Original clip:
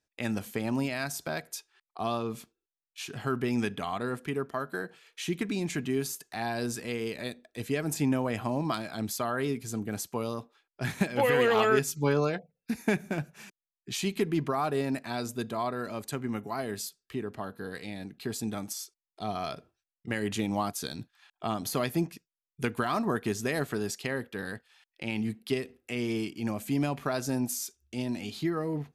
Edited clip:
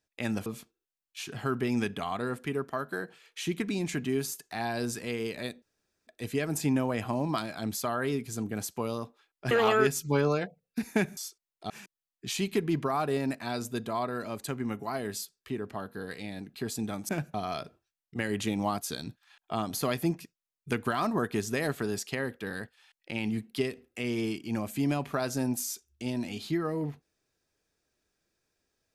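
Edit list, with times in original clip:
0.46–2.27 cut
7.43 insert room tone 0.45 s
10.87–11.43 cut
13.09–13.34 swap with 18.73–19.26

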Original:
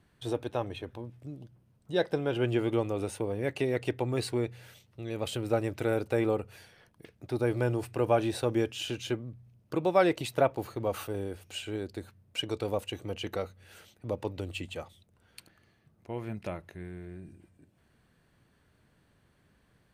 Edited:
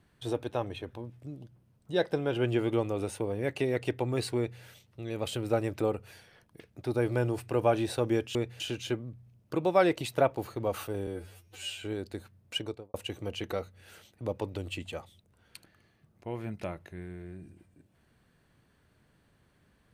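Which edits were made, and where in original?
4.37–4.62 copy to 8.8
5.81–6.26 cut
11.27–11.64 stretch 2×
12.37–12.77 studio fade out

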